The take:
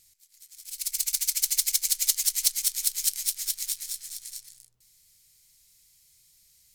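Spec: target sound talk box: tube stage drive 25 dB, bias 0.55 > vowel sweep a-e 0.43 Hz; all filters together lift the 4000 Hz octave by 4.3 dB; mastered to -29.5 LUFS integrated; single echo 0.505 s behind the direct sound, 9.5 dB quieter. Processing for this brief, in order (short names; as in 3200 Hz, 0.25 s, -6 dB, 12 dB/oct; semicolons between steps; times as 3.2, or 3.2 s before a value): bell 4000 Hz +5.5 dB; echo 0.505 s -9.5 dB; tube stage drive 25 dB, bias 0.55; vowel sweep a-e 0.43 Hz; gain +25.5 dB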